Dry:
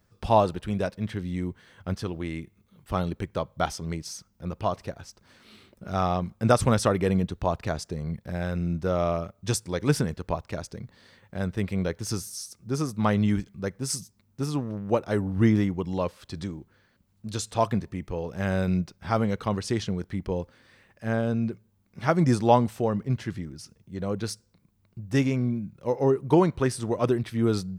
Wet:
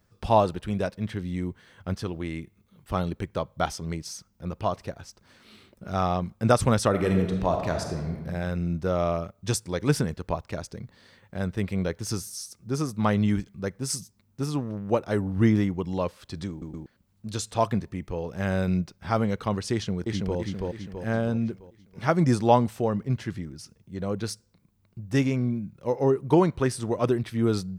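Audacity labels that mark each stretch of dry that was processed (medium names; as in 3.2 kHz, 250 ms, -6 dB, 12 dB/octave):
6.890000	8.160000	reverb throw, RT60 1.3 s, DRR 3 dB
16.500000	16.500000	stutter in place 0.12 s, 3 plays
19.730000	20.380000	echo throw 330 ms, feedback 50%, level -2 dB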